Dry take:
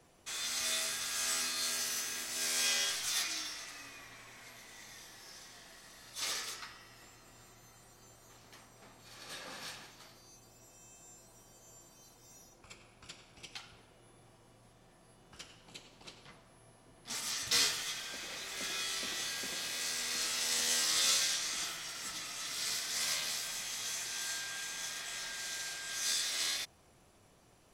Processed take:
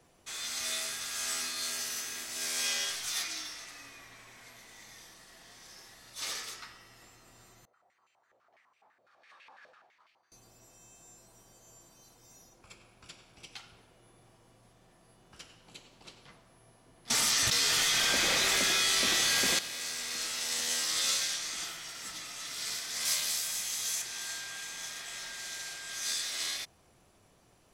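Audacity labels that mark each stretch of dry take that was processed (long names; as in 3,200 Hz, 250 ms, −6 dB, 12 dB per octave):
5.140000	5.940000	reverse
7.650000	10.320000	band-pass on a step sequencer 12 Hz 570–2,500 Hz
17.100000	19.590000	envelope flattener amount 100%
23.050000	24.020000	high-shelf EQ 5,600 Hz +10.5 dB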